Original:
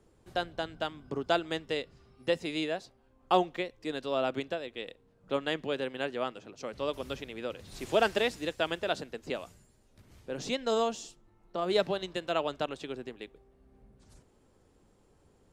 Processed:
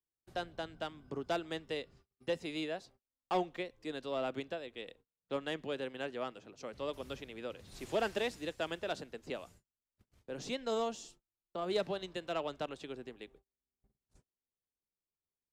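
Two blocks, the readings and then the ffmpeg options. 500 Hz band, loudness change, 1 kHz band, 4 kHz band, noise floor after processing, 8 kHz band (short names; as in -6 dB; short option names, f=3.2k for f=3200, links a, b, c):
-6.0 dB, -6.5 dB, -7.5 dB, -7.0 dB, under -85 dBFS, -5.5 dB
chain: -filter_complex "[0:a]agate=range=-34dB:threshold=-54dB:ratio=16:detection=peak,acrossover=split=440[a][b];[b]asoftclip=type=tanh:threshold=-22.5dB[c];[a][c]amix=inputs=2:normalize=0,volume=-5.5dB"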